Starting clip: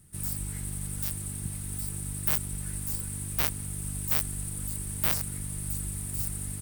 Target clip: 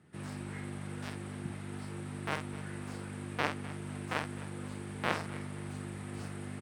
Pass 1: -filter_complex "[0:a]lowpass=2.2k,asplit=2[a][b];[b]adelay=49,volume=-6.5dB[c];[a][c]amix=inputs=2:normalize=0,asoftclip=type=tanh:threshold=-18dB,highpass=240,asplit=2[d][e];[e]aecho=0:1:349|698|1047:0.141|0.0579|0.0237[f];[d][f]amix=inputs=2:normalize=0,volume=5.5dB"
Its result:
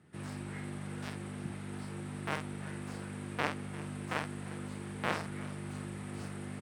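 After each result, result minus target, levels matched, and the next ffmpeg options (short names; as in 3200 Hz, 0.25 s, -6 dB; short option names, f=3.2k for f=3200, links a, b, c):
soft clip: distortion +17 dB; echo 95 ms late
-filter_complex "[0:a]lowpass=2.2k,asplit=2[a][b];[b]adelay=49,volume=-6.5dB[c];[a][c]amix=inputs=2:normalize=0,asoftclip=type=tanh:threshold=-8dB,highpass=240,asplit=2[d][e];[e]aecho=0:1:349|698|1047:0.141|0.0579|0.0237[f];[d][f]amix=inputs=2:normalize=0,volume=5.5dB"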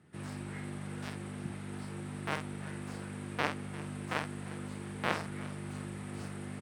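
echo 95 ms late
-filter_complex "[0:a]lowpass=2.2k,asplit=2[a][b];[b]adelay=49,volume=-6.5dB[c];[a][c]amix=inputs=2:normalize=0,asoftclip=type=tanh:threshold=-8dB,highpass=240,asplit=2[d][e];[e]aecho=0:1:254|508|762:0.141|0.0579|0.0237[f];[d][f]amix=inputs=2:normalize=0,volume=5.5dB"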